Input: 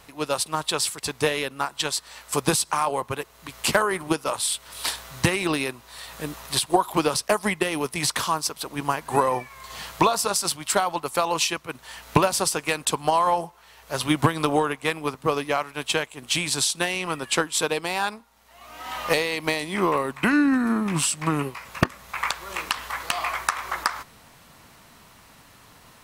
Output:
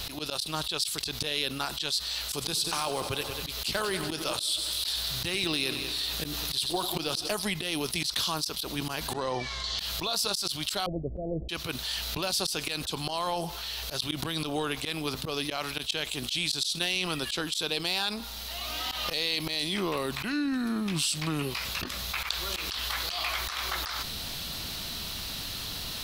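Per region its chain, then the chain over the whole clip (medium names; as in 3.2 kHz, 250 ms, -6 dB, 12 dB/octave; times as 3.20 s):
2.06–7.32 s: companded quantiser 8-bit + multi-head delay 95 ms, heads first and second, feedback 48%, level -19 dB
9.13–9.79 s: low-pass 7 kHz 24 dB/octave + band-stop 2.5 kHz, Q 6.7
10.86–11.49 s: steep low-pass 650 Hz 72 dB/octave + bass shelf 180 Hz +12 dB
whole clip: graphic EQ 125/250/500/1000/2000/4000/8000 Hz -7/-6/-7/-12/-9/+9/-8 dB; slow attack 154 ms; level flattener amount 70%; trim -3.5 dB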